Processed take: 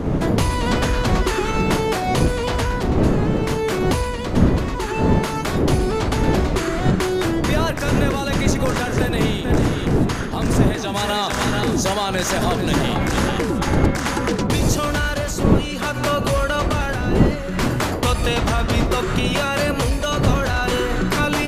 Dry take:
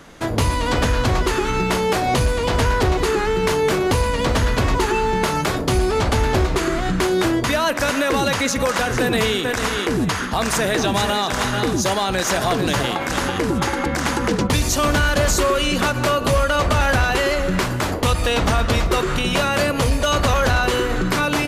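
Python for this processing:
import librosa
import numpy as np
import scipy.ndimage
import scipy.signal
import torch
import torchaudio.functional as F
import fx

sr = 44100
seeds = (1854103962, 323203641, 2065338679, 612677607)

y = fx.dmg_wind(x, sr, seeds[0], corner_hz=280.0, level_db=-15.0)
y = fx.rider(y, sr, range_db=10, speed_s=0.5)
y = y * 10.0 ** (-5.0 / 20.0)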